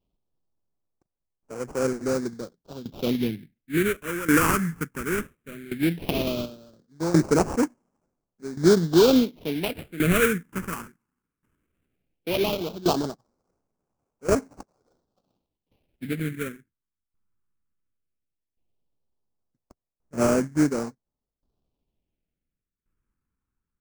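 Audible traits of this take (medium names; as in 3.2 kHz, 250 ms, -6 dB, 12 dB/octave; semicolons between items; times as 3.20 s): aliases and images of a low sample rate 1.9 kHz, jitter 20%; phasing stages 4, 0.16 Hz, lowest notch 630–3500 Hz; tremolo saw down 0.7 Hz, depth 85%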